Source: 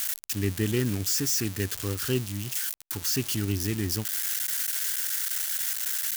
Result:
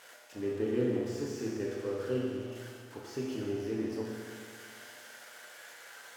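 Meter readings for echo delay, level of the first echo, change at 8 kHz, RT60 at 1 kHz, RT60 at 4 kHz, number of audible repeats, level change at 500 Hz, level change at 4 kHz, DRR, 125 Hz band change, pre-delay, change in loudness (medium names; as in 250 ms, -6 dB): no echo, no echo, -23.5 dB, 2.0 s, 2.0 s, no echo, +1.0 dB, -17.5 dB, -4.5 dB, -12.5 dB, 8 ms, -9.0 dB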